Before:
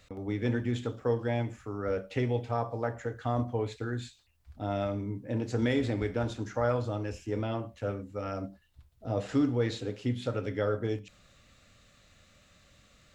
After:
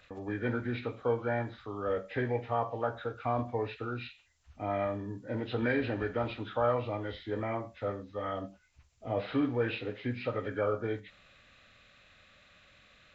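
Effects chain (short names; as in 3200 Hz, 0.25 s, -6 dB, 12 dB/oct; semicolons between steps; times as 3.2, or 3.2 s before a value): nonlinear frequency compression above 1100 Hz 1.5:1; low shelf 480 Hz -10.5 dB; gain +4.5 dB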